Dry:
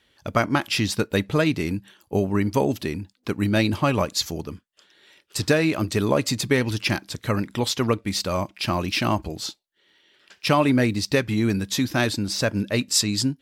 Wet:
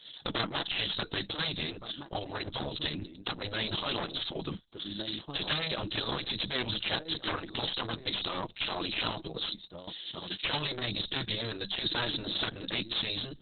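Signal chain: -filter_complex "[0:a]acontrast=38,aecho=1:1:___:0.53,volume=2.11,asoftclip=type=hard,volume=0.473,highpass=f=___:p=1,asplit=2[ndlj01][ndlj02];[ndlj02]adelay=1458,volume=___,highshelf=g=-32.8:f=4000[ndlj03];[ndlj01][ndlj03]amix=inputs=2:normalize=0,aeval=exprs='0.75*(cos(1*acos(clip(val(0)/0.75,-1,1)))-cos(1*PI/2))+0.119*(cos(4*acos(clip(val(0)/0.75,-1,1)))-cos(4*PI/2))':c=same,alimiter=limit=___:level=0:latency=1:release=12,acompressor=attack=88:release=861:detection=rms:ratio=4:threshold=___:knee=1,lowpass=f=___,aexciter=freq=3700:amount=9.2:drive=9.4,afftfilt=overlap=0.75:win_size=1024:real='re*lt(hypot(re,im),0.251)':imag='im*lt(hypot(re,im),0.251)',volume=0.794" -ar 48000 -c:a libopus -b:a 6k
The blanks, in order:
6.1, 130, 0.1, 0.335, 0.0631, 5400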